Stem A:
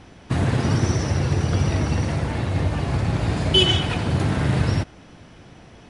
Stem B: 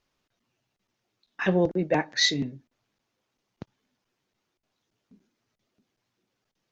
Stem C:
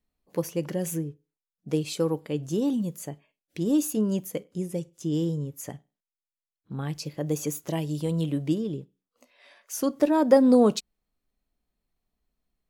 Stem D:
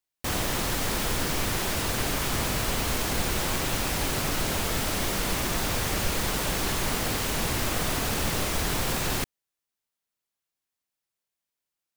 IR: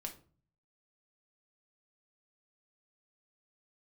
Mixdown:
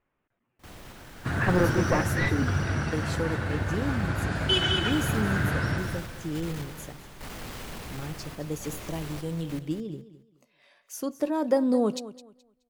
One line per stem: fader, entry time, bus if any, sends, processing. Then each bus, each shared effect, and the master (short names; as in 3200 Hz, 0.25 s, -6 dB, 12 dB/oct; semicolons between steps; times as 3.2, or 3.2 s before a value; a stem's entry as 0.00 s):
-8.5 dB, 0.95 s, no send, echo send -5 dB, bell 1500 Hz +13.5 dB 0.51 oct
+0.5 dB, 0.00 s, no send, no echo send, one-sided fold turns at -21.5 dBFS; LPF 2300 Hz 24 dB/oct
-6.0 dB, 1.20 s, send -23 dB, echo send -15 dB, dry
2.19 s -12.5 dB -> 2.62 s -20.5 dB -> 4.48 s -20.5 dB -> 4.92 s -9 dB, 0.35 s, no send, echo send -8 dB, tone controls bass +2 dB, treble -5 dB; random-step tremolo, depth 90%; overloaded stage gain 27 dB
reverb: on, RT60 0.40 s, pre-delay 5 ms
echo: feedback echo 0.212 s, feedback 23%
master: dry